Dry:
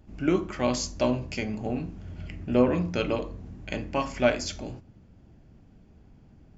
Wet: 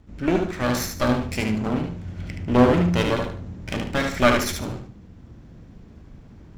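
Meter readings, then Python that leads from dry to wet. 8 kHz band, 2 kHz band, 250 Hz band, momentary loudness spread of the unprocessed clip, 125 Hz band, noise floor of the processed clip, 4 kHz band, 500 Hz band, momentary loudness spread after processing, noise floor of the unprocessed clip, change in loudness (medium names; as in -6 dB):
no reading, +8.0 dB, +5.5 dB, 16 LU, +8.0 dB, -46 dBFS, +6.0 dB, +3.5 dB, 15 LU, -55 dBFS, +5.5 dB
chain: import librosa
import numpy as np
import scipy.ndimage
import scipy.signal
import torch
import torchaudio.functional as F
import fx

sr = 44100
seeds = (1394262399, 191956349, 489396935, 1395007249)

y = fx.lower_of_two(x, sr, delay_ms=0.53)
y = fx.rider(y, sr, range_db=5, speed_s=2.0)
y = fx.echo_feedback(y, sr, ms=74, feedback_pct=26, wet_db=-5.0)
y = F.gain(torch.from_numpy(y), 4.5).numpy()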